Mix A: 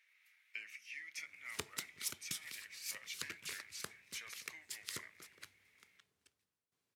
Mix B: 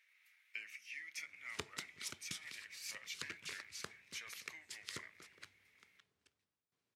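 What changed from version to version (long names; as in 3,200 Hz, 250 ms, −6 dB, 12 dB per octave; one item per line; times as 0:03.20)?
background: add high-frequency loss of the air 53 metres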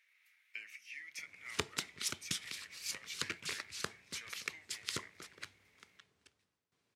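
background +8.0 dB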